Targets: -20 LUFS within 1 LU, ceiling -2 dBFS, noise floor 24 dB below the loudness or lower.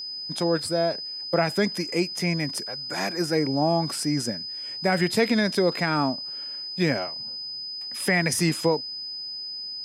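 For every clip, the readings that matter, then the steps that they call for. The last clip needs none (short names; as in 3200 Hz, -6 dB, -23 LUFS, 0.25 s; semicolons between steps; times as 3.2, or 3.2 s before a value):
steady tone 5000 Hz; tone level -32 dBFS; loudness -25.5 LUFS; peak -8.0 dBFS; loudness target -20.0 LUFS
-> notch 5000 Hz, Q 30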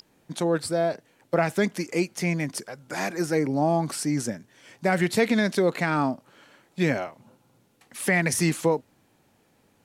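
steady tone none; loudness -25.5 LUFS; peak -8.5 dBFS; loudness target -20.0 LUFS
-> gain +5.5 dB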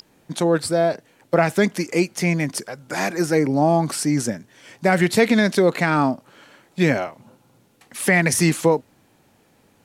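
loudness -20.0 LUFS; peak -3.0 dBFS; noise floor -59 dBFS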